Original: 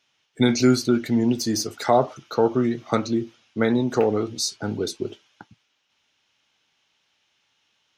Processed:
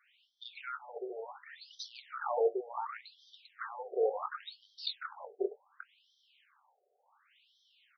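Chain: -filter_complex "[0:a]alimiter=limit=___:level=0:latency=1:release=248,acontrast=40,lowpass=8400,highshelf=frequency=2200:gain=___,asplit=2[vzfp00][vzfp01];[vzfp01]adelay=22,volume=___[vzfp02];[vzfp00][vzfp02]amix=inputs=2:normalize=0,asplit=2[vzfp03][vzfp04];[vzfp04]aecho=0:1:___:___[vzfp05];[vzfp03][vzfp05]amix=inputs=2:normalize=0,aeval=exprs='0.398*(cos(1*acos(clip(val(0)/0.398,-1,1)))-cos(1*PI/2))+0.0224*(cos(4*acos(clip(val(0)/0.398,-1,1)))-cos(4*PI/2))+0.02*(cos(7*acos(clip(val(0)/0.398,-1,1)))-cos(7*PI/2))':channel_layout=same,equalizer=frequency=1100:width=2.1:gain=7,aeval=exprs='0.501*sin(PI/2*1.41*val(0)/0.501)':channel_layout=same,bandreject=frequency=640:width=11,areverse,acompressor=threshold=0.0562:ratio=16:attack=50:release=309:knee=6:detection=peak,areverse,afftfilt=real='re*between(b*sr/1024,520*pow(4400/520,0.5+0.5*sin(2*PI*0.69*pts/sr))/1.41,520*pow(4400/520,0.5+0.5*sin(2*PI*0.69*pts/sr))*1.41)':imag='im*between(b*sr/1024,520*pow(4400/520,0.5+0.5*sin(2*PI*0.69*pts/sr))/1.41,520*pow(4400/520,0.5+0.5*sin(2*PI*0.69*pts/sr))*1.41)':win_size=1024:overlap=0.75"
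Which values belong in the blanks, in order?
0.158, -11.5, 0.251, 396, 0.422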